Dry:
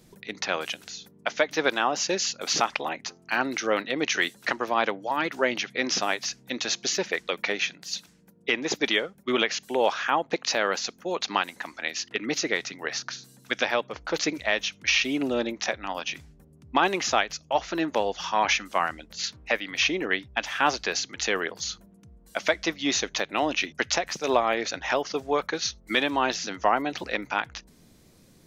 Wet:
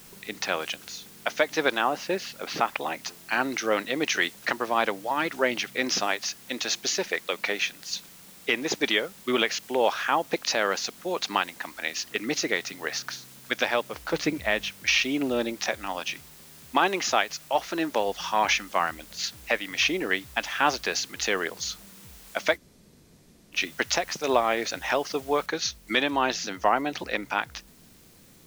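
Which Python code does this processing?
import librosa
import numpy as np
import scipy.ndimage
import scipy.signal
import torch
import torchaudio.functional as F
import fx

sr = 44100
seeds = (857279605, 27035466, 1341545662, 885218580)

y = fx.lowpass(x, sr, hz=2700.0, slope=12, at=(1.81, 2.81))
y = fx.highpass(y, sr, hz=190.0, slope=6, at=(6.07, 7.91))
y = fx.bass_treble(y, sr, bass_db=7, treble_db=-8, at=(14.13, 14.72))
y = fx.highpass(y, sr, hz=160.0, slope=6, at=(16.13, 18.08))
y = fx.noise_floor_step(y, sr, seeds[0], at_s=25.46, before_db=-50, after_db=-58, tilt_db=0.0)
y = fx.edit(y, sr, fx.room_tone_fill(start_s=22.56, length_s=0.99, crossfade_s=0.06), tone=tone)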